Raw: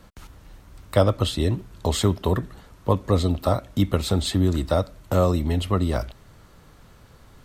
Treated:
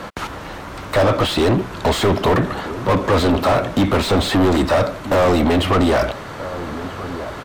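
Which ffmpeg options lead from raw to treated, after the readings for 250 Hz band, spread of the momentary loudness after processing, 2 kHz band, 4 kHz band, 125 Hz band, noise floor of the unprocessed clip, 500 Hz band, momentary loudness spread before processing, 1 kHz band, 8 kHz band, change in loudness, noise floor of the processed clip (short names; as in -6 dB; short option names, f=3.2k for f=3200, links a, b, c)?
+7.0 dB, 13 LU, +15.5 dB, +7.0 dB, +1.5 dB, -51 dBFS, +7.5 dB, 6 LU, +10.5 dB, +3.0 dB, +5.5 dB, -32 dBFS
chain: -filter_complex "[0:a]asplit=2[a][b];[b]highpass=f=720:p=1,volume=38dB,asoftclip=type=tanh:threshold=-4dB[c];[a][c]amix=inputs=2:normalize=0,lowpass=f=1.3k:p=1,volume=-6dB,asplit=2[d][e];[e]adelay=1283,volume=-13dB,highshelf=f=4k:g=-28.9[f];[d][f]amix=inputs=2:normalize=0,volume=-2.5dB"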